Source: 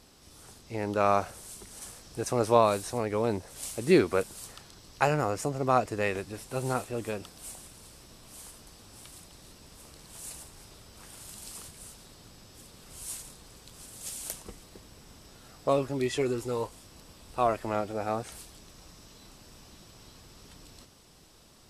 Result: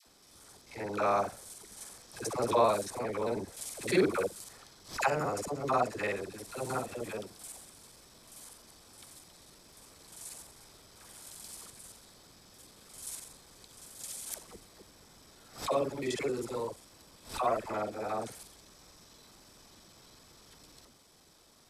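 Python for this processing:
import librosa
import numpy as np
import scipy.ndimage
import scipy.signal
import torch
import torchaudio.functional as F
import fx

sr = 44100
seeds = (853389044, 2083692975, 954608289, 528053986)

y = fx.local_reverse(x, sr, ms=44.0)
y = fx.low_shelf(y, sr, hz=200.0, db=-8.5)
y = fx.notch(y, sr, hz=2800.0, q=11.0)
y = fx.dispersion(y, sr, late='lows', ms=68.0, hz=680.0)
y = fx.pre_swell(y, sr, db_per_s=150.0)
y = y * 10.0 ** (-2.5 / 20.0)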